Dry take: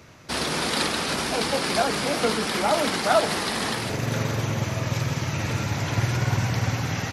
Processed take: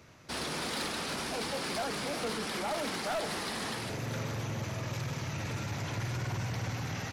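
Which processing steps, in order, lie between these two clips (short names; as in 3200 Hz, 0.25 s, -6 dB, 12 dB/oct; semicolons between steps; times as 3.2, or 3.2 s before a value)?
soft clip -22 dBFS, distortion -11 dB; gain -7.5 dB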